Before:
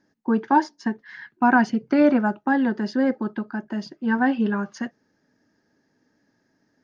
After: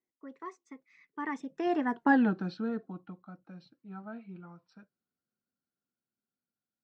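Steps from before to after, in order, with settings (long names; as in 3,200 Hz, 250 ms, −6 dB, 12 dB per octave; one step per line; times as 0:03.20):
source passing by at 0:02.12, 59 m/s, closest 9.3 metres
level −2.5 dB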